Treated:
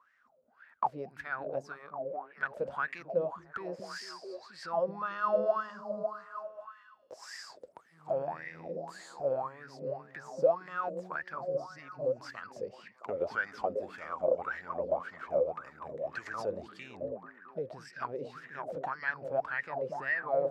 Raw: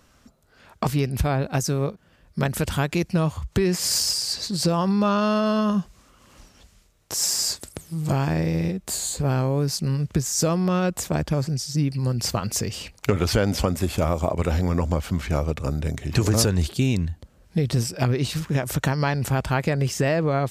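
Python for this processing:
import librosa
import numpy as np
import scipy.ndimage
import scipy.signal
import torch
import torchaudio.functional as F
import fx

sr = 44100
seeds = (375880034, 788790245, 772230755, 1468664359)

y = fx.echo_stepped(x, sr, ms=222, hz=190.0, octaves=0.7, feedback_pct=70, wet_db=-1)
y = fx.dynamic_eq(y, sr, hz=5000.0, q=2.7, threshold_db=-41.0, ratio=4.0, max_db=4)
y = fx.wah_lfo(y, sr, hz=1.8, low_hz=510.0, high_hz=1900.0, q=15.0)
y = y * librosa.db_to_amplitude(6.5)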